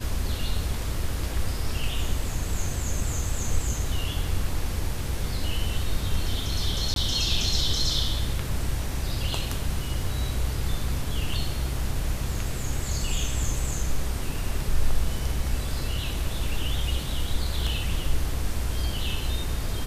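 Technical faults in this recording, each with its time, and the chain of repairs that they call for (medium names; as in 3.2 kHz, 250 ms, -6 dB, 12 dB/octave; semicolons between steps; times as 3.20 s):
6.94–6.96 s: dropout 22 ms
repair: interpolate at 6.94 s, 22 ms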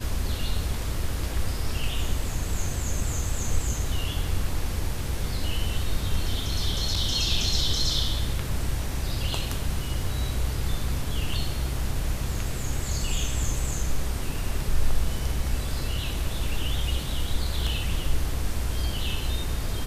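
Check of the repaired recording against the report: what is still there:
nothing left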